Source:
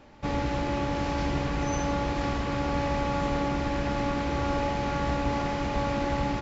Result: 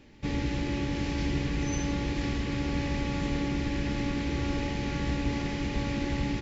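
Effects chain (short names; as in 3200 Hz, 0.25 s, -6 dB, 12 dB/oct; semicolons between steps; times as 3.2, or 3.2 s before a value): band shelf 890 Hz -10.5 dB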